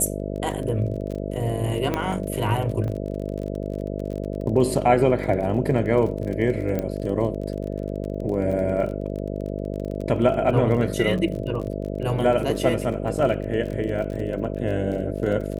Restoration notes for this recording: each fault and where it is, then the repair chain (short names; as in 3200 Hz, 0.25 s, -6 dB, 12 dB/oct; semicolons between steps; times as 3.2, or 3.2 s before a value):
buzz 50 Hz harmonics 13 -29 dBFS
crackle 32/s -31 dBFS
1.94 pop -11 dBFS
2.88 gap 2.3 ms
6.79 pop -14 dBFS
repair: de-click; de-hum 50 Hz, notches 13; interpolate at 2.88, 2.3 ms